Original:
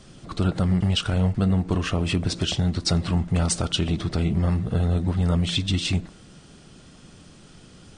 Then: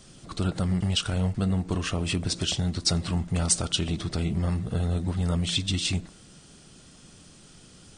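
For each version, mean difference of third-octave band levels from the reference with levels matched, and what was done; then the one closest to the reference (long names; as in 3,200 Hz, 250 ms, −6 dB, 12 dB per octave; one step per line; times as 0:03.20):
1.5 dB: high-shelf EQ 5,200 Hz +11 dB
level −4.5 dB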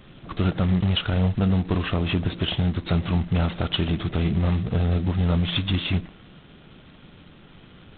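4.0 dB: G.726 16 kbit/s 8,000 Hz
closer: first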